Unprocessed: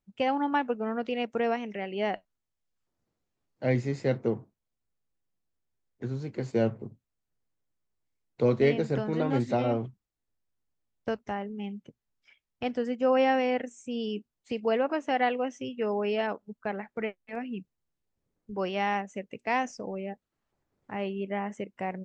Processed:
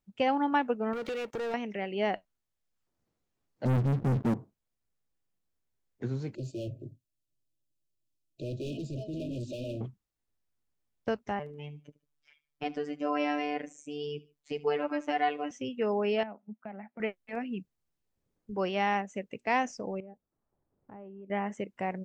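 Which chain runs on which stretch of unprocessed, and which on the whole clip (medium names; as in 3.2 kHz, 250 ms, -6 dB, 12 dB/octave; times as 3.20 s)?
0.93–1.54 s: compression 4:1, threshold -39 dBFS + comb 2.2 ms, depth 45% + waveshaping leveller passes 3
3.65–4.34 s: four-pole ladder low-pass 300 Hz, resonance 25% + waveshaping leveller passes 5
6.35–9.81 s: static phaser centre 310 Hz, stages 8 + overload inside the chain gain 33.5 dB + brick-wall FIR band-stop 670–2400 Hz
11.39–15.51 s: robot voice 147 Hz + feedback delay 74 ms, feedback 29%, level -20 dB
16.23–17.00 s: compression 3:1, threshold -41 dBFS + cabinet simulation 180–2500 Hz, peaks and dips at 220 Hz +8 dB, 320 Hz -8 dB, 460 Hz -10 dB, 710 Hz +5 dB, 1.1 kHz -6 dB, 1.6 kHz -6 dB
20.00–21.30 s: low-pass 1 kHz + compression 3:1, threshold -48 dBFS
whole clip: none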